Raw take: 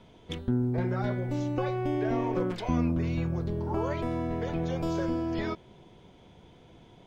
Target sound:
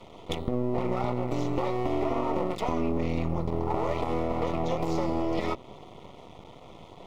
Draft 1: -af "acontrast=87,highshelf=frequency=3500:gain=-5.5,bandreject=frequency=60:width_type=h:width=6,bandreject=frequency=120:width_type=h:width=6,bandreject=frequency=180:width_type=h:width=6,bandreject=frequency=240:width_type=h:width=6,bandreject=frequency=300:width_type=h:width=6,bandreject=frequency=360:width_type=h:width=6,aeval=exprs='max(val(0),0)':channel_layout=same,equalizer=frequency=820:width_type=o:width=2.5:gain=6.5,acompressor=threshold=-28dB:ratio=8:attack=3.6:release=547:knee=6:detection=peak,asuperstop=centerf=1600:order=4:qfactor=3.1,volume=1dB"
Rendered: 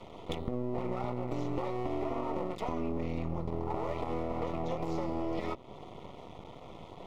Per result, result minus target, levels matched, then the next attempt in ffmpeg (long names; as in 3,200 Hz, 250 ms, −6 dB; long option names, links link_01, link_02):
downward compressor: peak gain reduction +6.5 dB; 8,000 Hz band −3.0 dB
-af "acontrast=87,highshelf=frequency=3500:gain=-5.5,bandreject=frequency=60:width_type=h:width=6,bandreject=frequency=120:width_type=h:width=6,bandreject=frequency=180:width_type=h:width=6,bandreject=frequency=240:width_type=h:width=6,bandreject=frequency=300:width_type=h:width=6,bandreject=frequency=360:width_type=h:width=6,aeval=exprs='max(val(0),0)':channel_layout=same,equalizer=frequency=820:width_type=o:width=2.5:gain=6.5,acompressor=threshold=-20.5dB:ratio=8:attack=3.6:release=547:knee=6:detection=peak,asuperstop=centerf=1600:order=4:qfactor=3.1,volume=1dB"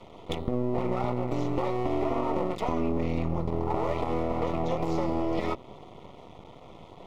8,000 Hz band −3.5 dB
-af "acontrast=87,bandreject=frequency=60:width_type=h:width=6,bandreject=frequency=120:width_type=h:width=6,bandreject=frequency=180:width_type=h:width=6,bandreject=frequency=240:width_type=h:width=6,bandreject=frequency=300:width_type=h:width=6,bandreject=frequency=360:width_type=h:width=6,aeval=exprs='max(val(0),0)':channel_layout=same,equalizer=frequency=820:width_type=o:width=2.5:gain=6.5,acompressor=threshold=-20.5dB:ratio=8:attack=3.6:release=547:knee=6:detection=peak,asuperstop=centerf=1600:order=4:qfactor=3.1,volume=1dB"